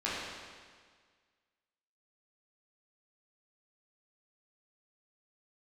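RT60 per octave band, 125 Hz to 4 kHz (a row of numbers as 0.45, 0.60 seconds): 1.7, 1.7, 1.7, 1.7, 1.7, 1.6 seconds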